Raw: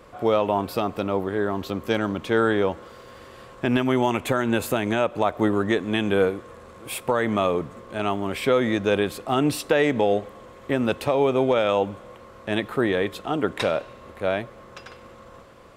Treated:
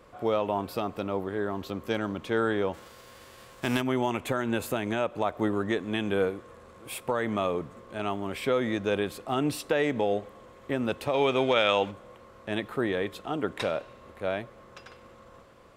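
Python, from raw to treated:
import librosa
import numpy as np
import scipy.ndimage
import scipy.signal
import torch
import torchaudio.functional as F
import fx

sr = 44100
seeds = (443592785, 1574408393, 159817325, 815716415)

y = fx.envelope_flatten(x, sr, power=0.6, at=(2.73, 3.8), fade=0.02)
y = fx.peak_eq(y, sr, hz=3200.0, db=11.5, octaves=2.7, at=(11.13, 11.9), fade=0.02)
y = y * 10.0 ** (-6.0 / 20.0)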